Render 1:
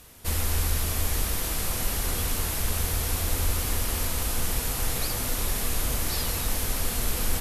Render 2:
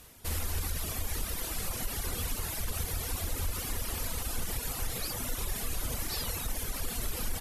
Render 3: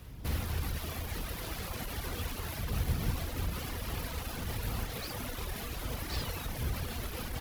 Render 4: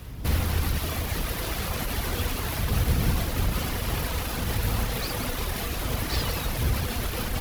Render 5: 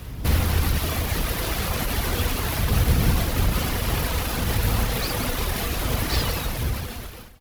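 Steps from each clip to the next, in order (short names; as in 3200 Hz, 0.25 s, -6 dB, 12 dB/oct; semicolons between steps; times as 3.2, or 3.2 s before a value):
reverb removal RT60 1.8 s; limiter -20.5 dBFS, peak gain reduction 5 dB; gain -2.5 dB
median filter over 5 samples; wind noise 91 Hz -38 dBFS; HPF 41 Hz
split-band echo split 2500 Hz, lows 90 ms, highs 0.175 s, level -9 dB; gain +8.5 dB
ending faded out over 1.24 s; gain +4 dB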